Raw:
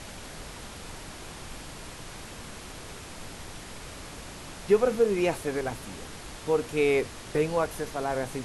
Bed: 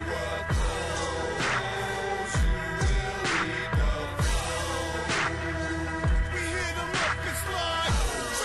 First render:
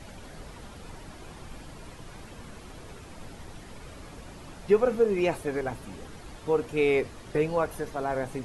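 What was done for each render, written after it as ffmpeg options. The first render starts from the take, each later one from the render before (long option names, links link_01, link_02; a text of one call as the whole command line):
ffmpeg -i in.wav -af "afftdn=noise_reduction=9:noise_floor=-43" out.wav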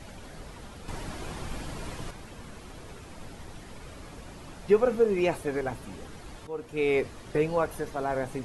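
ffmpeg -i in.wav -filter_complex "[0:a]asettb=1/sr,asplit=3[link_01][link_02][link_03];[link_01]atrim=end=0.884[link_04];[link_02]atrim=start=0.88:end=2.11,asetpts=PTS-STARTPTS,afade=type=in:duration=0.004:curve=qsin,afade=type=out:start_time=1.226:duration=0.004:curve=qsin,acontrast=74[link_05];[link_03]atrim=start=2.106[link_06];[link_04][link_05]acrossfade=duration=0.004:curve1=hsin:curve2=qsin[link_07];[link_07][link_06]acrossfade=duration=0.004:curve1=qsin:curve2=hsin,asplit=2[link_08][link_09];[link_08]atrim=end=6.47,asetpts=PTS-STARTPTS,afade=type=out:start_time=6.466:duration=0.004:curve=hsin:silence=0.177828[link_10];[link_09]atrim=start=6.47,asetpts=PTS-STARTPTS,afade=type=in:duration=0.54:silence=0.177828[link_11];[link_10][link_11]concat=n=2:v=0:a=1" out.wav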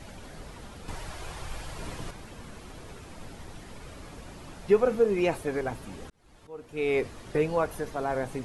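ffmpeg -i in.wav -filter_complex "[0:a]asettb=1/sr,asplit=3[link_01][link_02][link_03];[link_01]atrim=end=0.934[link_04];[link_02]atrim=start=0.93:end=1.79,asetpts=PTS-STARTPTS,afade=type=in:duration=0.004:curve=qsin,afade=type=out:start_time=0.856:duration=0.004:curve=qsin,equalizer=frequency=240:width=1.2:gain=-11.5[link_05];[link_03]atrim=start=1.786[link_06];[link_04][link_05]acrossfade=duration=0.004:curve1=hsin:curve2=qsin[link_07];[link_07][link_06]acrossfade=duration=0.004:curve1=qsin:curve2=hsin,asplit=2[link_08][link_09];[link_08]atrim=end=6.1,asetpts=PTS-STARTPTS,afade=type=out:start_time=6.096:duration=0.004:curve=hsin[link_10];[link_09]atrim=start=6.1,asetpts=PTS-STARTPTS,afade=type=in:duration=0.94[link_11];[link_10][link_11]concat=n=2:v=0:a=1" out.wav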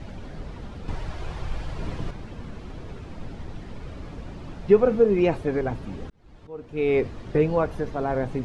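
ffmpeg -i in.wav -af "lowpass=4800,lowshelf=frequency=460:gain=9" out.wav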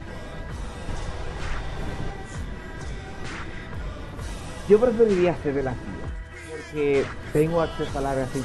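ffmpeg -i in.wav -i bed.wav -filter_complex "[1:a]volume=-10dB[link_01];[0:a][link_01]amix=inputs=2:normalize=0" out.wav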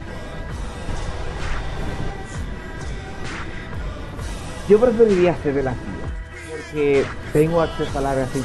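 ffmpeg -i in.wav -af "volume=4.5dB,alimiter=limit=-3dB:level=0:latency=1" out.wav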